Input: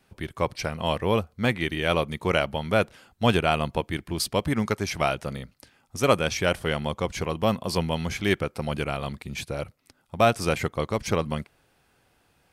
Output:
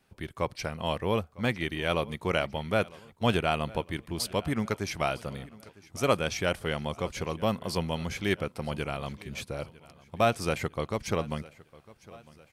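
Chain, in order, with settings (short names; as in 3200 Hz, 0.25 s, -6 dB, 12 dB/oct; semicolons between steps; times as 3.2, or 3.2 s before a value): feedback echo 0.954 s, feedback 49%, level -21.5 dB; gain -4.5 dB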